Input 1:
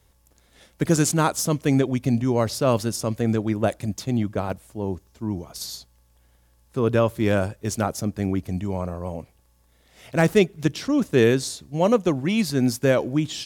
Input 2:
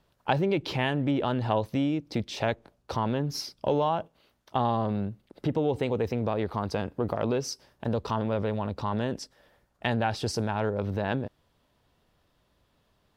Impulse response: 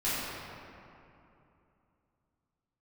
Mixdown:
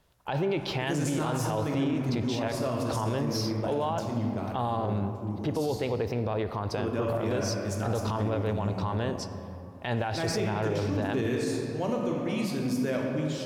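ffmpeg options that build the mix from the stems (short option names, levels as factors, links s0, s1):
-filter_complex "[0:a]highpass=61,volume=0.211,asplit=2[s0][s1];[s1]volume=0.473[s2];[1:a]equalizer=f=220:t=o:w=0.77:g=-5,volume=1.06,asplit=2[s3][s4];[s4]volume=0.0944[s5];[2:a]atrim=start_sample=2205[s6];[s2][s5]amix=inputs=2:normalize=0[s7];[s7][s6]afir=irnorm=-1:irlink=0[s8];[s0][s3][s8]amix=inputs=3:normalize=0,alimiter=limit=0.1:level=0:latency=1:release=33"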